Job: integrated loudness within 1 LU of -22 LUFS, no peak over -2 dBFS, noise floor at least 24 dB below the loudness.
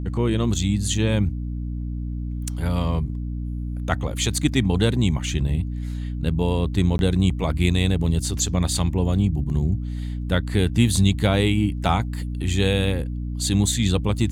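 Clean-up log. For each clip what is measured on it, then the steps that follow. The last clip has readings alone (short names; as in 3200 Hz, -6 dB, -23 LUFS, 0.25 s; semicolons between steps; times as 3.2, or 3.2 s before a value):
dropouts 1; longest dropout 11 ms; hum 60 Hz; harmonics up to 300 Hz; hum level -25 dBFS; loudness -23.0 LUFS; peak -4.5 dBFS; loudness target -22.0 LUFS
-> interpolate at 6.98, 11 ms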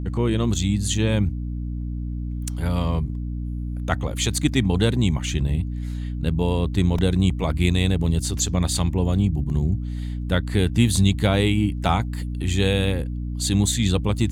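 dropouts 0; hum 60 Hz; harmonics up to 300 Hz; hum level -25 dBFS
-> de-hum 60 Hz, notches 5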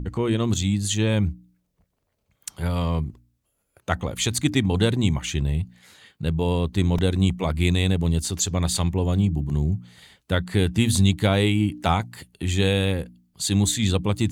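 hum none; loudness -23.0 LUFS; peak -5.0 dBFS; loudness target -22.0 LUFS
-> gain +1 dB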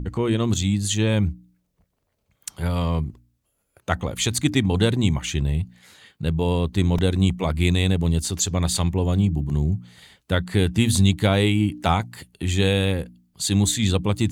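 loudness -22.0 LUFS; peak -4.0 dBFS; noise floor -73 dBFS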